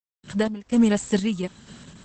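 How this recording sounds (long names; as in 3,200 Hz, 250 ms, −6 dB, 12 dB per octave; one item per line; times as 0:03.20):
a quantiser's noise floor 10 bits, dither none
sample-and-hold tremolo 4.2 Hz, depth 100%
Opus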